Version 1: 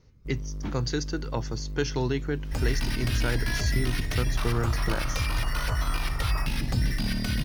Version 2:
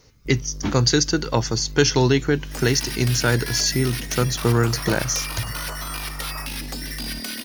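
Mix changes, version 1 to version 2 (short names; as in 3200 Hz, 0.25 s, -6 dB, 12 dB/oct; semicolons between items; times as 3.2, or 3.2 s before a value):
speech +10.0 dB; second sound: add steep high-pass 230 Hz 48 dB/oct; master: add high shelf 5700 Hz +12 dB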